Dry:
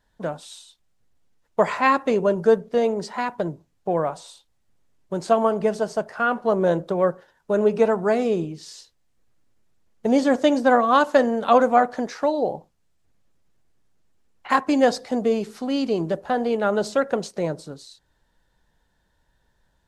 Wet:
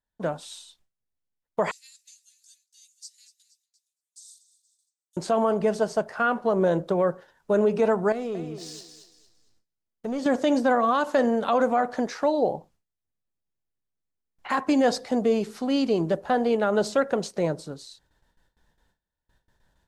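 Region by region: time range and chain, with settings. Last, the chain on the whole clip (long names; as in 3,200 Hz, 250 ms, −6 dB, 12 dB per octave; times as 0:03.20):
0:01.71–0:05.17: inverse Chebyshev high-pass filter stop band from 1,000 Hz, stop band 80 dB + echo with shifted repeats 235 ms, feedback 56%, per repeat −44 Hz, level −15 dB
0:08.12–0:10.26: leveller curve on the samples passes 1 + downward compressor 2 to 1, threshold −38 dBFS + feedback echo with a high-pass in the loop 229 ms, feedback 32%, high-pass 230 Hz, level −8.5 dB
whole clip: noise gate with hold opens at −56 dBFS; brickwall limiter −13 dBFS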